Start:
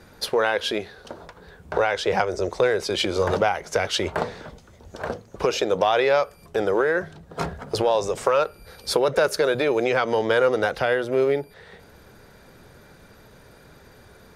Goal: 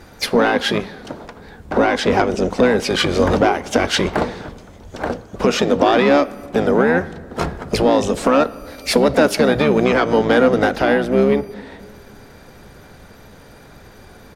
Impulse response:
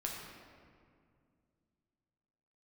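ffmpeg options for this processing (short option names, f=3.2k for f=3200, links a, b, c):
-filter_complex "[0:a]acontrast=86,asplit=3[a][b][c];[b]asetrate=22050,aresample=44100,atempo=2,volume=-3dB[d];[c]asetrate=58866,aresample=44100,atempo=0.749154,volume=-15dB[e];[a][d][e]amix=inputs=3:normalize=0,asplit=2[f][g];[1:a]atrim=start_sample=2205[h];[g][h]afir=irnorm=-1:irlink=0,volume=-16dB[i];[f][i]amix=inputs=2:normalize=0,volume=-3dB"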